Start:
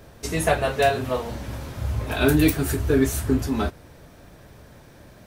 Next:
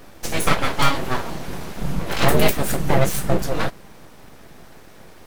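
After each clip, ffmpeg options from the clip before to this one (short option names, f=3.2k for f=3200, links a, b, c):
-af "aeval=exprs='abs(val(0))':c=same,volume=5dB"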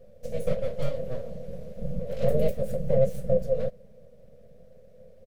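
-af "firequalizer=gain_entry='entry(220,0);entry(310,-24);entry(510,13);entry(850,-23);entry(2000,-17)':delay=0.05:min_phase=1,volume=-7.5dB"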